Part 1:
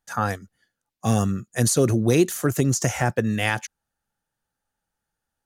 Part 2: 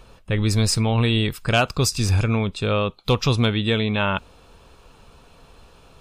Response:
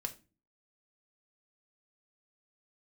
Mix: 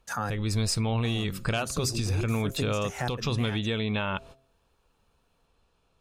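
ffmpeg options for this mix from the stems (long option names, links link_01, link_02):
-filter_complex "[0:a]volume=0.5dB[link_01];[1:a]agate=range=-22dB:threshold=-40dB:ratio=16:detection=peak,bandreject=frequency=133.3:width_type=h:width=4,bandreject=frequency=266.6:width_type=h:width=4,bandreject=frequency=399.9:width_type=h:width=4,bandreject=frequency=533.2:width_type=h:width=4,bandreject=frequency=666.5:width_type=h:width=4,acompressor=threshold=-27dB:ratio=3,volume=2dB,asplit=2[link_02][link_03];[link_03]apad=whole_len=240618[link_04];[link_01][link_04]sidechaincompress=threshold=-44dB:ratio=5:attack=49:release=169[link_05];[link_05][link_02]amix=inputs=2:normalize=0,alimiter=limit=-17dB:level=0:latency=1:release=394"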